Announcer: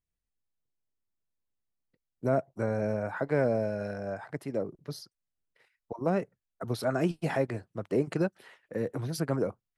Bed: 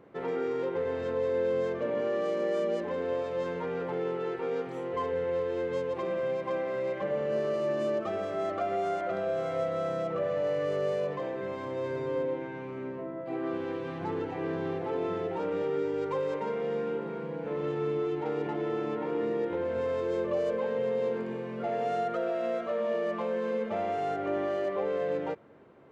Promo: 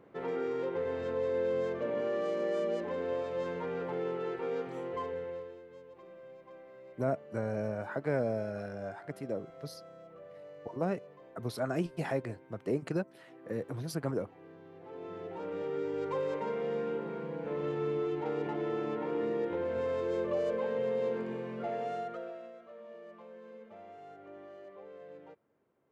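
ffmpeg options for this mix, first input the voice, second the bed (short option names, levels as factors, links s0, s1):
-filter_complex "[0:a]adelay=4750,volume=0.596[s0];[1:a]volume=5.62,afade=t=out:st=4.79:d=0.82:silence=0.133352,afade=t=in:st=14.72:d=1.47:silence=0.125893,afade=t=out:st=21.47:d=1.05:silence=0.141254[s1];[s0][s1]amix=inputs=2:normalize=0"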